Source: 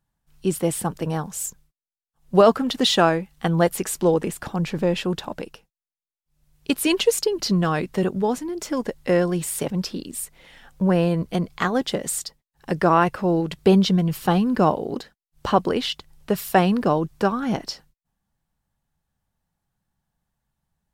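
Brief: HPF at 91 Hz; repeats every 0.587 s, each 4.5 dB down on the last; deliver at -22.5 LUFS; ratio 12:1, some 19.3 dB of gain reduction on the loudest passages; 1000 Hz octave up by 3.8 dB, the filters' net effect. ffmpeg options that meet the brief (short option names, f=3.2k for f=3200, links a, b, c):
-af "highpass=91,equalizer=f=1k:t=o:g=5,acompressor=threshold=-28dB:ratio=12,aecho=1:1:587|1174|1761|2348|2935|3522|4109|4696|5283:0.596|0.357|0.214|0.129|0.0772|0.0463|0.0278|0.0167|0.01,volume=9.5dB"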